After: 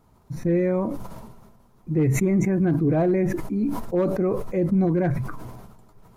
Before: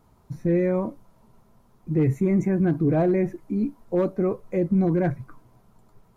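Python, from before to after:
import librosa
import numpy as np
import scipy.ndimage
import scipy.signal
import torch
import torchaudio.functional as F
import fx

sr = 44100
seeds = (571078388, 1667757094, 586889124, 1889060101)

y = fx.sustainer(x, sr, db_per_s=39.0)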